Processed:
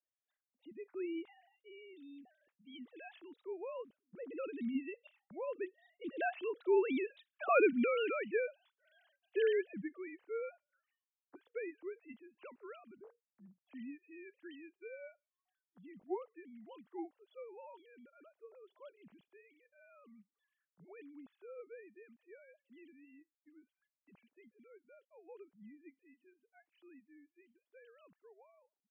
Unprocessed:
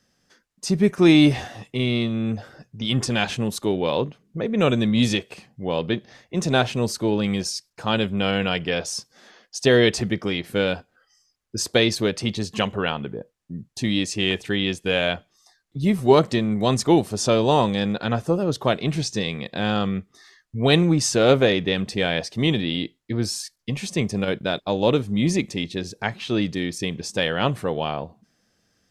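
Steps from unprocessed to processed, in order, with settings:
three sine waves on the formant tracks
source passing by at 0:07.42, 17 m/s, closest 4.5 metres

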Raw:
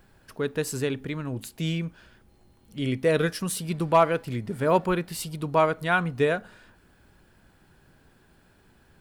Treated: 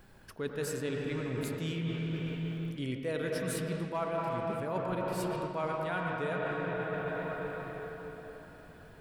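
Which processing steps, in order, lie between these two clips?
convolution reverb RT60 4.2 s, pre-delay 83 ms, DRR −1 dB
reversed playback
downward compressor 6 to 1, threshold −32 dBFS, peak gain reduction 17.5 dB
reversed playback

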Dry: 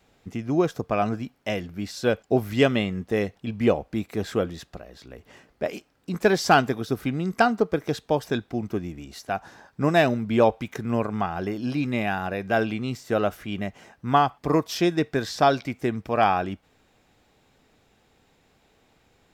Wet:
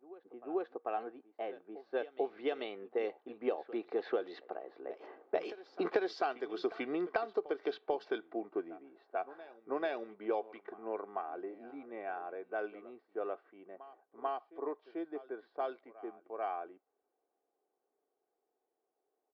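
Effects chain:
source passing by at 0:05.79, 18 m/s, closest 11 metres
high-pass filter 380 Hz 24 dB per octave
low-pass that shuts in the quiet parts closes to 860 Hz, open at −30.5 dBFS
parametric band 4,400 Hz +12.5 dB 0.91 octaves
comb filter 2.6 ms, depth 34%
downward compressor 8 to 1, threshold −38 dBFS, peak gain reduction 24.5 dB
head-to-tape spacing loss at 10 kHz 42 dB
on a send: backwards echo 441 ms −17 dB
on the sum: level +10.5 dB

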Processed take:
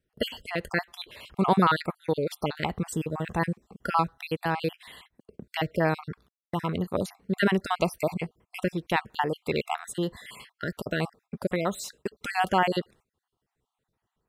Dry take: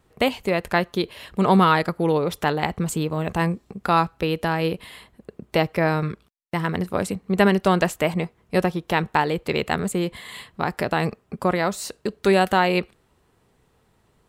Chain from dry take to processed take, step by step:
time-frequency cells dropped at random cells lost 43%
noise gate −50 dBFS, range −13 dB
level −3.5 dB

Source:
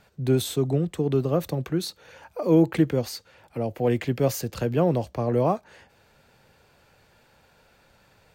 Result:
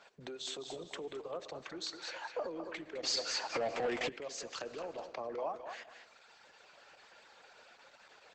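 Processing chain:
downward compressor 20 to 1, threshold −32 dBFS, peak gain reduction 19.5 dB
reverb reduction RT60 1.9 s
feedback echo with a high-pass in the loop 207 ms, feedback 26%, high-pass 720 Hz, level −7.5 dB
convolution reverb RT60 1.7 s, pre-delay 42 ms, DRR 16.5 dB
automatic gain control gain up to 4 dB
brickwall limiter −29 dBFS, peak gain reduction 10 dB
band-pass filter 540–7,200 Hz
0:03.03–0:04.09: leveller curve on the samples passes 3
level +3 dB
Opus 12 kbit/s 48,000 Hz

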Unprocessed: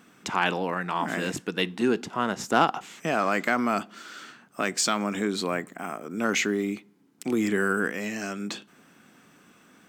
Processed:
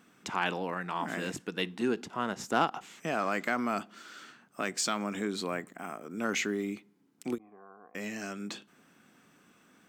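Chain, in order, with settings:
0:07.38–0:07.95: formant resonators in series a
every ending faded ahead of time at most 460 dB per second
level −6 dB

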